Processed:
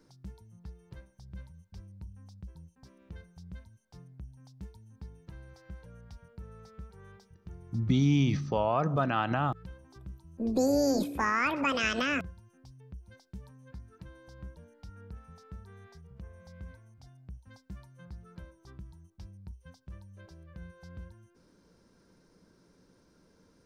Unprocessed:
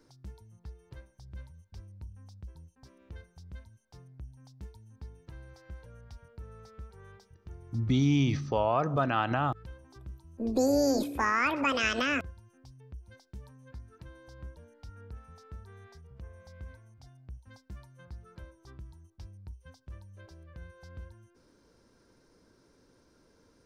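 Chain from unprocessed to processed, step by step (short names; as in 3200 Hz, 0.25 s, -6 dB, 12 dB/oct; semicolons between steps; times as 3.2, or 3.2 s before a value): bell 180 Hz +11 dB 0.31 oct; gain -1 dB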